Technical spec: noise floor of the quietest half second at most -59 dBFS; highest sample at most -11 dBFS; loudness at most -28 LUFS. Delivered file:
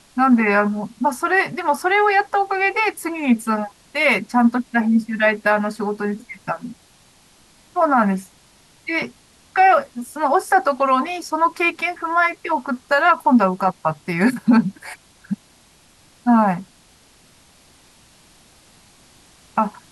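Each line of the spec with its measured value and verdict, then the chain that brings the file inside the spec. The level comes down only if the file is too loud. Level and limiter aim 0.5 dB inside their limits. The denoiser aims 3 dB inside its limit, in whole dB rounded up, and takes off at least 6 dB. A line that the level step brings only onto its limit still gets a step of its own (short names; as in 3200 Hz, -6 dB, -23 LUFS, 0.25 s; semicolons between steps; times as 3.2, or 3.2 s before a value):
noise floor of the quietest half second -53 dBFS: fail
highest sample -5.5 dBFS: fail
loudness -19.0 LUFS: fail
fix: gain -9.5 dB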